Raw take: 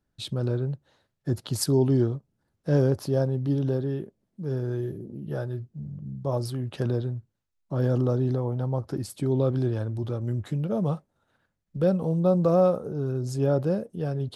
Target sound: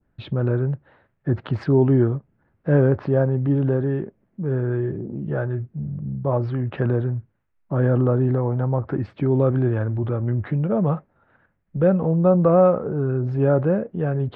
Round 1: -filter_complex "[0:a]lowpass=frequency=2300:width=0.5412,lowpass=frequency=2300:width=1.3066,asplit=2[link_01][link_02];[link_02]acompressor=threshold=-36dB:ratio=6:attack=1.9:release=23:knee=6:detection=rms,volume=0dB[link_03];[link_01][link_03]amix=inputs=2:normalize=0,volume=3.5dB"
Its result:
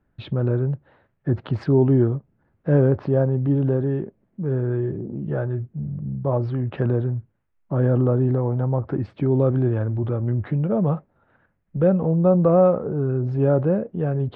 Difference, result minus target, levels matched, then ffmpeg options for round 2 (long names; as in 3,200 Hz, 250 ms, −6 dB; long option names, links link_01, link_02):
2,000 Hz band −4.0 dB
-filter_complex "[0:a]lowpass=frequency=2300:width=0.5412,lowpass=frequency=2300:width=1.3066,adynamicequalizer=threshold=0.00562:dfrequency=1700:dqfactor=0.94:tfrequency=1700:tqfactor=0.94:attack=5:release=100:ratio=0.4:range=2.5:mode=boostabove:tftype=bell,asplit=2[link_01][link_02];[link_02]acompressor=threshold=-36dB:ratio=6:attack=1.9:release=23:knee=6:detection=rms,volume=0dB[link_03];[link_01][link_03]amix=inputs=2:normalize=0,volume=3.5dB"